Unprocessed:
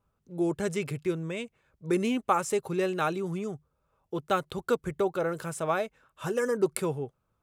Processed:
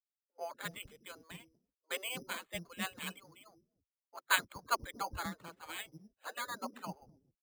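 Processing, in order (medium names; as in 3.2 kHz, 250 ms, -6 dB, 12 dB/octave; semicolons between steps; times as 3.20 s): reverb removal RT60 0.91 s; spectral gate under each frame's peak -15 dB weak; 4.17–4.68 s: peaking EQ 1.5 kHz +6.5 dB 1.3 oct; bands offset in time highs, lows 250 ms, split 370 Hz; careless resampling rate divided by 8×, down filtered, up hold; three bands expanded up and down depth 100%; trim +1 dB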